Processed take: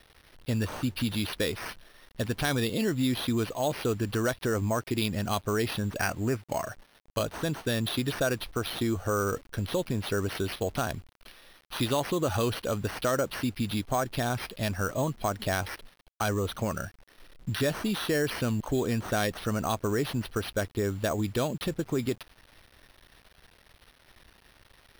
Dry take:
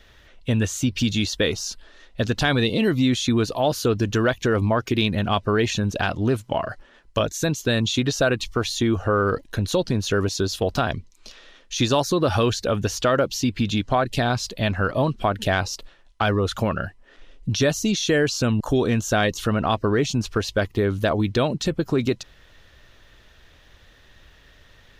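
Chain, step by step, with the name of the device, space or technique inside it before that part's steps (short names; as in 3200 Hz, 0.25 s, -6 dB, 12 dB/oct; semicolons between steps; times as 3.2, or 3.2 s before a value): 5.96–6.67 resonant high shelf 3200 Hz -13 dB, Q 3; early 8-bit sampler (sample-rate reducer 7300 Hz, jitter 0%; bit-crush 8-bit); gain -7.5 dB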